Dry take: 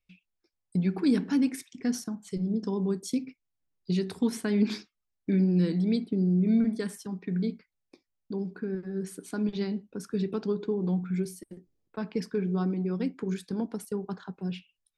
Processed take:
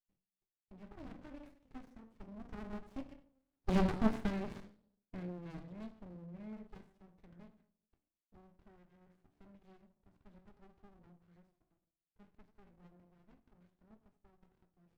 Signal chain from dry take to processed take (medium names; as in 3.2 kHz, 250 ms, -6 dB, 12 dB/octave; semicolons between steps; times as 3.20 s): Doppler pass-by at 3.79 s, 19 m/s, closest 2.8 m; three-band isolator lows -20 dB, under 400 Hz, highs -23 dB, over 2.6 kHz; reverberation RT60 0.50 s, pre-delay 4 ms, DRR 7 dB; sliding maximum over 65 samples; trim +13.5 dB